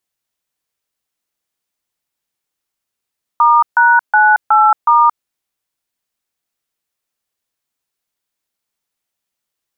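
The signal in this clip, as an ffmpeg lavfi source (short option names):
-f lavfi -i "aevalsrc='0.355*clip(min(mod(t,0.368),0.225-mod(t,0.368))/0.002,0,1)*(eq(floor(t/0.368),0)*(sin(2*PI*941*mod(t,0.368))+sin(2*PI*1209*mod(t,0.368)))+eq(floor(t/0.368),1)*(sin(2*PI*941*mod(t,0.368))+sin(2*PI*1477*mod(t,0.368)))+eq(floor(t/0.368),2)*(sin(2*PI*852*mod(t,0.368))+sin(2*PI*1477*mod(t,0.368)))+eq(floor(t/0.368),3)*(sin(2*PI*852*mod(t,0.368))+sin(2*PI*1336*mod(t,0.368)))+eq(floor(t/0.368),4)*(sin(2*PI*941*mod(t,0.368))+sin(2*PI*1209*mod(t,0.368))))':d=1.84:s=44100"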